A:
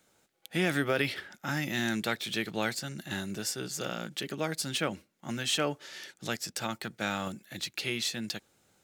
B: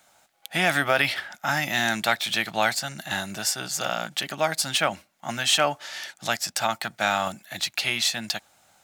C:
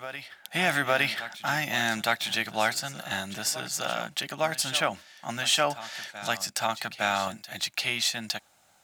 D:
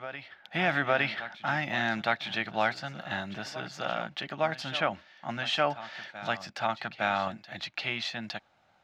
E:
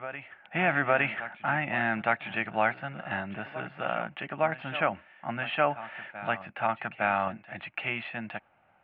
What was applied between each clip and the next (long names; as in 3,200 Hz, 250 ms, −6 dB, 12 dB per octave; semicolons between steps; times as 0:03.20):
low shelf with overshoot 550 Hz −7 dB, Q 3; level +8.5 dB
backwards echo 861 ms −13.5 dB; level −3 dB
high-frequency loss of the air 260 metres
elliptic low-pass filter 2,700 Hz, stop band 60 dB; level +2 dB